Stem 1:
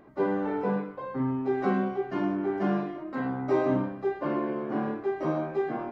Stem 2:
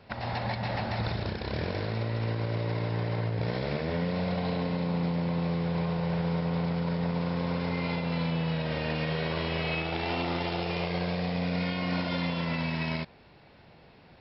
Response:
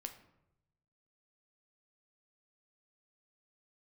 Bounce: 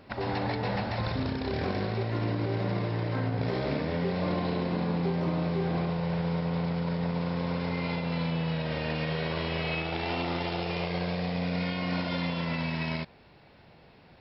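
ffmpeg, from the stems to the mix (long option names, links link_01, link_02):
-filter_complex "[0:a]alimiter=limit=-23dB:level=0:latency=1:release=165,volume=-3.5dB[link_01];[1:a]volume=-0.5dB[link_02];[link_01][link_02]amix=inputs=2:normalize=0"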